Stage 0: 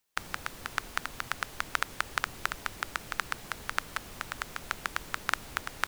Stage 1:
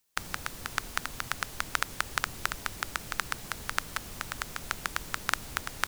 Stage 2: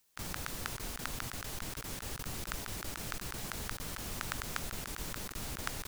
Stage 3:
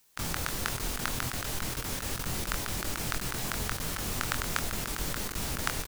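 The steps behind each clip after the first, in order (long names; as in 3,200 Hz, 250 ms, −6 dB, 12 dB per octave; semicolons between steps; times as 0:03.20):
bass and treble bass +4 dB, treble +5 dB
compressor whose output falls as the input rises −36 dBFS, ratio −0.5; level −1 dB
double-tracking delay 24 ms −7 dB; level +6.5 dB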